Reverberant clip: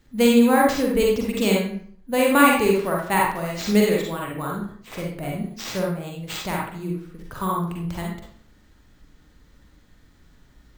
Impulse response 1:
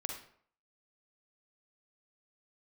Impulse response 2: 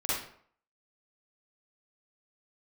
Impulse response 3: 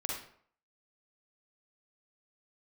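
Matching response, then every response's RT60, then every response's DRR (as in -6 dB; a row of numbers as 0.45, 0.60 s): 3; 0.60, 0.60, 0.60 s; 2.0, -10.0, -2.5 dB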